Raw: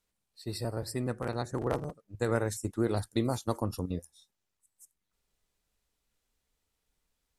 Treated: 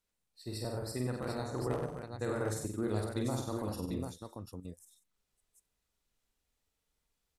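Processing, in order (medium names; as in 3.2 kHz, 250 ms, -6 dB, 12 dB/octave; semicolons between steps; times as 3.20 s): peak limiter -19.5 dBFS, peak gain reduction 6 dB; on a send: multi-tap echo 48/94/146/184/744 ms -4.5/-7/-12/-17/-6 dB; on the sum: trim -5 dB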